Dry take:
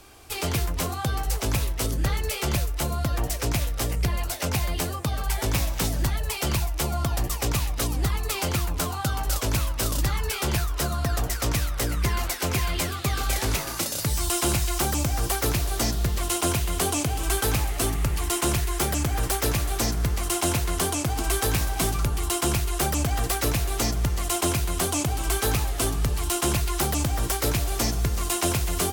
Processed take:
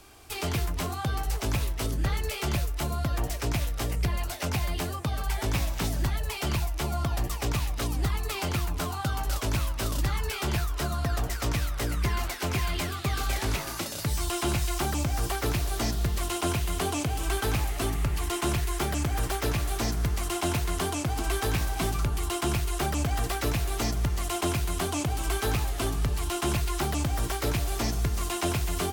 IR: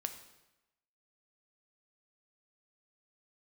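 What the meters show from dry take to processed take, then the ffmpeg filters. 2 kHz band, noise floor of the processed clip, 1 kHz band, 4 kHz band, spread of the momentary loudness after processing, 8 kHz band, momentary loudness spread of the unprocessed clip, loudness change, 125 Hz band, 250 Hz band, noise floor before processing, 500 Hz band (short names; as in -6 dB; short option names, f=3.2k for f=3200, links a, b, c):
-2.5 dB, -35 dBFS, -2.5 dB, -4.0 dB, 2 LU, -7.5 dB, 3 LU, -3.5 dB, -2.5 dB, -2.5 dB, -32 dBFS, -3.0 dB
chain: -filter_complex "[0:a]acrossover=split=4400[a][b];[a]bandreject=f=510:w=12[c];[b]alimiter=level_in=2dB:limit=-24dB:level=0:latency=1:release=134,volume=-2dB[d];[c][d]amix=inputs=2:normalize=0,volume=-2.5dB"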